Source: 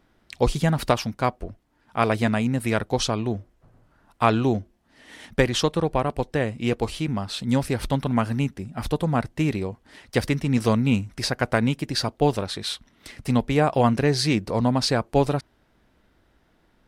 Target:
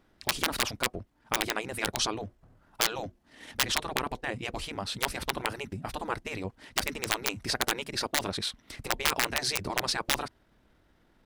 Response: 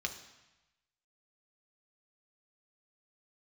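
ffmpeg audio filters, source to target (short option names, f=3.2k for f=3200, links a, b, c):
-af "atempo=1.5,aeval=exprs='(mod(3.35*val(0)+1,2)-1)/3.35':c=same,afftfilt=real='re*lt(hypot(re,im),0.251)':imag='im*lt(hypot(re,im),0.251)':win_size=1024:overlap=0.75,volume=-2dB"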